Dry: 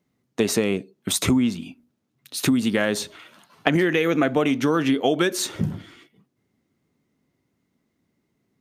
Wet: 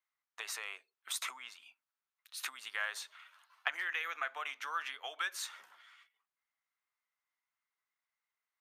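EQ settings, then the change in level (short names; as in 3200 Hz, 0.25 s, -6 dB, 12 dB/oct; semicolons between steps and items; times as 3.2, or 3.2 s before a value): HPF 1100 Hz 24 dB/oct; bell 4000 Hz -5.5 dB 2.7 oct; high shelf 5100 Hz -9 dB; -5.0 dB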